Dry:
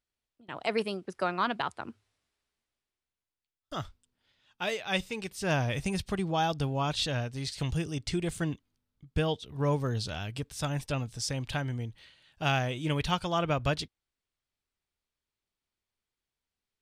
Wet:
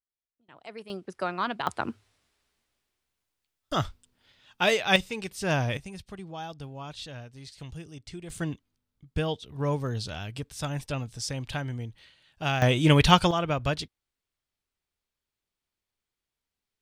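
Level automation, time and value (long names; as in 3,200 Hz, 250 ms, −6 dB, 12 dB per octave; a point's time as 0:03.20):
−13 dB
from 0:00.90 −0.5 dB
from 0:01.67 +9 dB
from 0:04.96 +2 dB
from 0:05.77 −10 dB
from 0:08.30 0 dB
from 0:12.62 +11 dB
from 0:13.31 +1 dB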